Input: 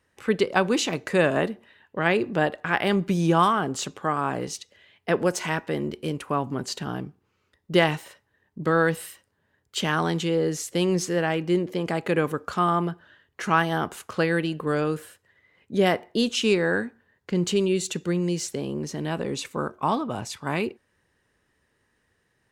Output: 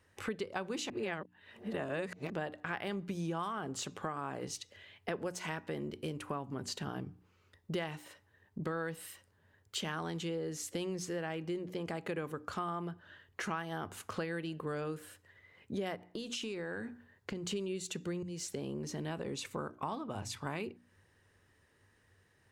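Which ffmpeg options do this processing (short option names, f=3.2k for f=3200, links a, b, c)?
-filter_complex "[0:a]asplit=3[a][b][c];[a]afade=t=out:st=15.95:d=0.02[d];[b]acompressor=threshold=-29dB:ratio=6:attack=3.2:release=140:knee=1:detection=peak,afade=t=in:st=15.95:d=0.02,afade=t=out:st=17.5:d=0.02[e];[c]afade=t=in:st=17.5:d=0.02[f];[d][e][f]amix=inputs=3:normalize=0,asplit=4[g][h][i][j];[g]atrim=end=0.902[k];[h]atrim=start=0.898:end=2.302,asetpts=PTS-STARTPTS,areverse[l];[i]atrim=start=2.298:end=18.23,asetpts=PTS-STARTPTS,afade=t=out:st=15.928:d=0.004:c=hsin:silence=0.112202[m];[j]atrim=start=18.23,asetpts=PTS-STARTPTS,afade=t=in:d=0.43:silence=0.112202[n];[k][l]acrossfade=d=0.004:c1=hsin:c2=hsin[o];[m][n]concat=n=2:v=0:a=1[p];[o][p]acrossfade=d=0.004:c1=hsin:c2=hsin,equalizer=f=96:t=o:w=0.22:g=13,bandreject=f=60:t=h:w=6,bandreject=f=120:t=h:w=6,bandreject=f=180:t=h:w=6,bandreject=f=240:t=h:w=6,bandreject=f=300:t=h:w=6,acompressor=threshold=-38dB:ratio=4"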